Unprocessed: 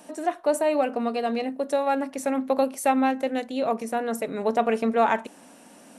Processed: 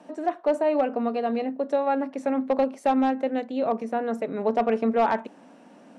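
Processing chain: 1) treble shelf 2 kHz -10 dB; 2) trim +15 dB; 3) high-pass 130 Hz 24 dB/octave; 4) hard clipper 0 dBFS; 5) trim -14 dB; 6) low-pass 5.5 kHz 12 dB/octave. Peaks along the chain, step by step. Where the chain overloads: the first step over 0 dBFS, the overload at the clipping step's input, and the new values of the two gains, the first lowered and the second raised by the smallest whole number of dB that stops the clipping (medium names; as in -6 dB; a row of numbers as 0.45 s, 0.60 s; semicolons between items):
-11.0 dBFS, +4.0 dBFS, +5.0 dBFS, 0.0 dBFS, -14.0 dBFS, -14.0 dBFS; step 2, 5.0 dB; step 2 +10 dB, step 5 -9 dB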